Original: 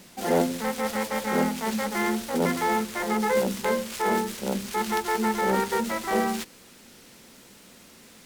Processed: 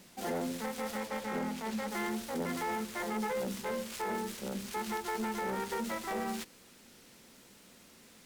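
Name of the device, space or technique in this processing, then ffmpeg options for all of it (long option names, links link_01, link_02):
limiter into clipper: -filter_complex "[0:a]alimiter=limit=-18dB:level=0:latency=1:release=72,asoftclip=type=hard:threshold=-23dB,asettb=1/sr,asplit=3[link_01][link_02][link_03];[link_01]atrim=end=1.004[link_04];[link_02]atrim=start=1:end=1.88,asetpts=PTS-STARTPTS,afade=type=in:duration=0.004:curve=qsin,afade=type=out:start_time=0.876:duration=0.004:curve=qsin,highshelf=frequency=6000:gain=-5.5[link_05];[link_03]atrim=start=1.876[link_06];[link_04][link_05]acrossfade=duration=0.004:curve1=hsin:curve2=qsin[link_07];[link_07][link_06]acrossfade=duration=0.004:curve1=qsin:curve2=hsin,volume=-7dB"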